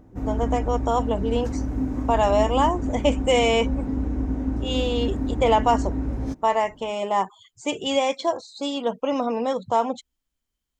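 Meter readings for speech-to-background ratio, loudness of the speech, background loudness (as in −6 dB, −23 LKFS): 4.0 dB, −24.0 LKFS, −28.0 LKFS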